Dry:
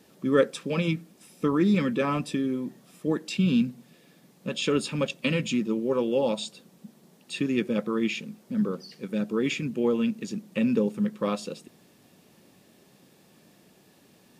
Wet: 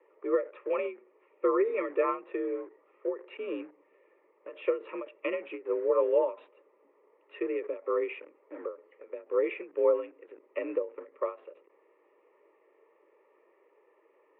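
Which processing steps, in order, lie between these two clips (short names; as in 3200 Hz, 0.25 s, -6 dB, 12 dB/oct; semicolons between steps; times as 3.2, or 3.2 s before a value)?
fixed phaser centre 1000 Hz, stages 8; in parallel at -8 dB: bit-crush 7-bit; on the sum: mistuned SSB +53 Hz 310–2000 Hz; ending taper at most 190 dB/s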